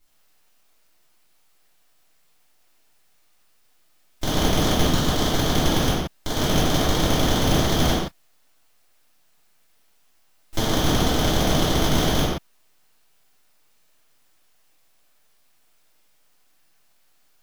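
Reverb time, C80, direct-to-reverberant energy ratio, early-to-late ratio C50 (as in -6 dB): no single decay rate, 1.0 dB, -13.0 dB, -2.0 dB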